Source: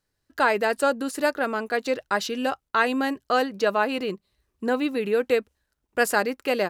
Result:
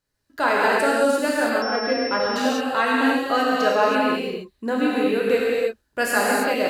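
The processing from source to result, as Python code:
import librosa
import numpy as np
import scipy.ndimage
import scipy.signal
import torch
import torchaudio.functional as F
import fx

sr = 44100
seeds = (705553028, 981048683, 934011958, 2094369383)

y = fx.rev_gated(x, sr, seeds[0], gate_ms=350, shape='flat', drr_db=-5.5)
y = fx.pwm(y, sr, carrier_hz=5400.0, at=(1.62, 2.36))
y = y * librosa.db_to_amplitude(-2.5)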